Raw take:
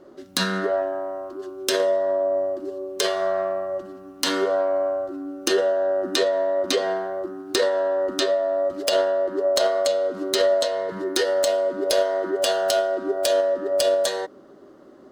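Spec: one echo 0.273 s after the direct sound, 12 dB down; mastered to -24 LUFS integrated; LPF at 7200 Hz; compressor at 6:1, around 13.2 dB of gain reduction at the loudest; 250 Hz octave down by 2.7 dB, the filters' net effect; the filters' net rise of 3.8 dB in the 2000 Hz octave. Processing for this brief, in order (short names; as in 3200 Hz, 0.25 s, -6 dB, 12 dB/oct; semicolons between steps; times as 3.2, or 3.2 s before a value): LPF 7200 Hz; bell 250 Hz -4.5 dB; bell 2000 Hz +5 dB; compressor 6:1, threshold -31 dBFS; echo 0.273 s -12 dB; gain +9.5 dB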